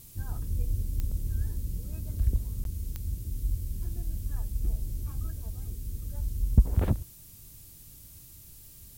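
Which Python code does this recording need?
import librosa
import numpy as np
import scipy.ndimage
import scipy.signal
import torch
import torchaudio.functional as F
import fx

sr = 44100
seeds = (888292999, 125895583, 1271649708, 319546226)

y = fx.fix_declip(x, sr, threshold_db=-10.0)
y = fx.fix_declick_ar(y, sr, threshold=10.0)
y = fx.fix_interpolate(y, sr, at_s=(2.64,), length_ms=12.0)
y = fx.noise_reduce(y, sr, print_start_s=7.04, print_end_s=7.54, reduce_db=25.0)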